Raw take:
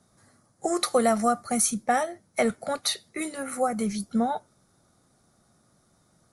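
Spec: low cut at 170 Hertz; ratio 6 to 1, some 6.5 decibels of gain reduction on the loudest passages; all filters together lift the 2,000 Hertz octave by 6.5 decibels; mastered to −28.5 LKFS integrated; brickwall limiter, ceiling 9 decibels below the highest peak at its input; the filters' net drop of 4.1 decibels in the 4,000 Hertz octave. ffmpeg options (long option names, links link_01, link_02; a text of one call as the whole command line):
ffmpeg -i in.wav -af "highpass=170,equalizer=frequency=2000:width_type=o:gain=9,equalizer=frequency=4000:width_type=o:gain=-6.5,acompressor=threshold=-23dB:ratio=6,volume=2.5dB,alimiter=limit=-17dB:level=0:latency=1" out.wav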